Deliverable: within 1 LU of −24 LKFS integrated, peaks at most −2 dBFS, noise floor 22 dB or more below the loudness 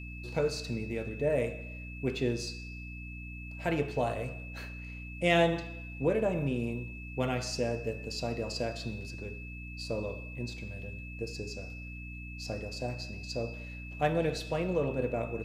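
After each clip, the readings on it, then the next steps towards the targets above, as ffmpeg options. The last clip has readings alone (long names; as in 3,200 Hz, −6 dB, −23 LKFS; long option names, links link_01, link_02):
mains hum 60 Hz; hum harmonics up to 300 Hz; level of the hum −41 dBFS; interfering tone 2,600 Hz; level of the tone −46 dBFS; integrated loudness −34.0 LKFS; sample peak −12.0 dBFS; target loudness −24.0 LKFS
→ -af "bandreject=frequency=60:width_type=h:width=6,bandreject=frequency=120:width_type=h:width=6,bandreject=frequency=180:width_type=h:width=6,bandreject=frequency=240:width_type=h:width=6,bandreject=frequency=300:width_type=h:width=6"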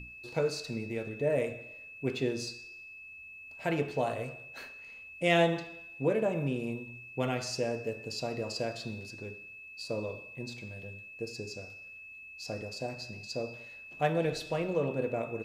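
mains hum none found; interfering tone 2,600 Hz; level of the tone −46 dBFS
→ -af "bandreject=frequency=2600:width=30"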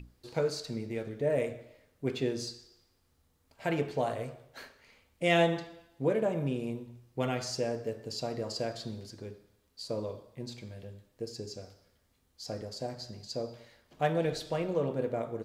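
interfering tone none found; integrated loudness −34.0 LKFS; sample peak −13.5 dBFS; target loudness −24.0 LKFS
→ -af "volume=10dB"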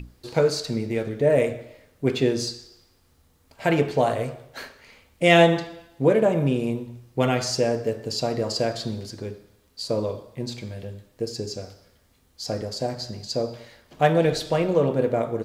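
integrated loudness −24.0 LKFS; sample peak −3.5 dBFS; background noise floor −61 dBFS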